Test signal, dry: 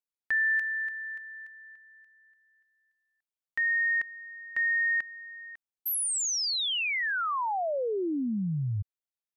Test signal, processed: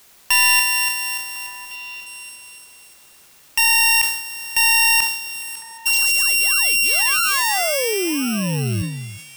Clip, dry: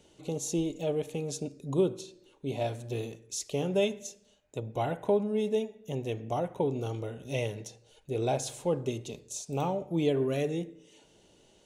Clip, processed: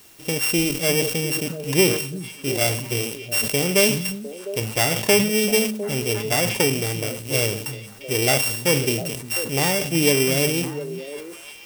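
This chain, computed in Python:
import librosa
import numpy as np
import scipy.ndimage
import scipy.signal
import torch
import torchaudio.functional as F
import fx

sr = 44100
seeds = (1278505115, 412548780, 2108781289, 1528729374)

p1 = np.r_[np.sort(x[:len(x) // 16 * 16].reshape(-1, 16), axis=1).ravel(), x[len(x) // 16 * 16:]]
p2 = fx.high_shelf(p1, sr, hz=3500.0, db=11.0)
p3 = fx.dmg_noise_colour(p2, sr, seeds[0], colour='white', level_db=-53.0)
p4 = fx.leveller(p3, sr, passes=1)
p5 = p4 + fx.echo_stepped(p4, sr, ms=352, hz=170.0, octaves=1.4, feedback_pct=70, wet_db=-6.5, dry=0)
p6 = fx.sustainer(p5, sr, db_per_s=70.0)
y = p6 * 10.0 ** (3.5 / 20.0)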